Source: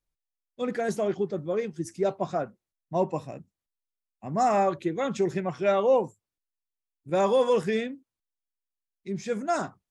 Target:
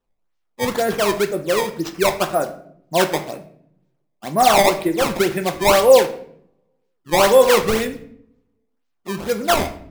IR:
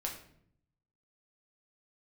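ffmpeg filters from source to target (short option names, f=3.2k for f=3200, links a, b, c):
-filter_complex "[0:a]equalizer=f=95:w=0.8:g=-13.5,acrusher=samples=18:mix=1:aa=0.000001:lfo=1:lforange=28.8:lforate=2,asplit=2[a][b];[1:a]atrim=start_sample=2205[c];[b][c]afir=irnorm=-1:irlink=0,volume=-1dB[d];[a][d]amix=inputs=2:normalize=0,volume=5dB"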